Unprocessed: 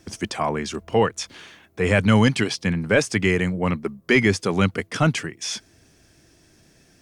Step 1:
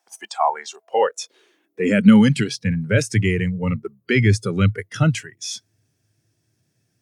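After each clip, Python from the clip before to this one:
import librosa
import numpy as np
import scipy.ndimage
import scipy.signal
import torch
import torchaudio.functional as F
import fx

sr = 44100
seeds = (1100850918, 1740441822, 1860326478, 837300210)

y = fx.high_shelf(x, sr, hz=9600.0, db=10.5)
y = fx.noise_reduce_blind(y, sr, reduce_db=15)
y = fx.filter_sweep_highpass(y, sr, from_hz=800.0, to_hz=110.0, start_s=0.73, end_s=2.66, q=5.8)
y = y * librosa.db_to_amplitude(-2.5)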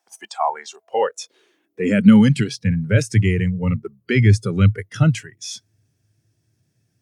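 y = fx.low_shelf(x, sr, hz=140.0, db=9.0)
y = y * librosa.db_to_amplitude(-2.0)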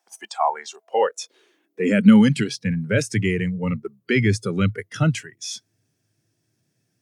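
y = scipy.signal.sosfilt(scipy.signal.butter(2, 170.0, 'highpass', fs=sr, output='sos'), x)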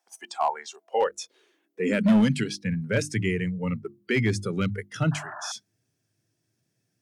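y = np.clip(10.0 ** (11.0 / 20.0) * x, -1.0, 1.0) / 10.0 ** (11.0 / 20.0)
y = fx.hum_notches(y, sr, base_hz=50, count=7)
y = fx.spec_paint(y, sr, seeds[0], shape='noise', start_s=5.11, length_s=0.41, low_hz=590.0, high_hz=1800.0, level_db=-35.0)
y = y * librosa.db_to_amplitude(-4.0)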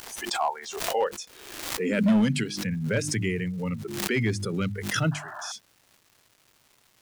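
y = fx.dmg_crackle(x, sr, seeds[1], per_s=590.0, level_db=-46.0)
y = fx.pre_swell(y, sr, db_per_s=49.0)
y = y * librosa.db_to_amplitude(-2.0)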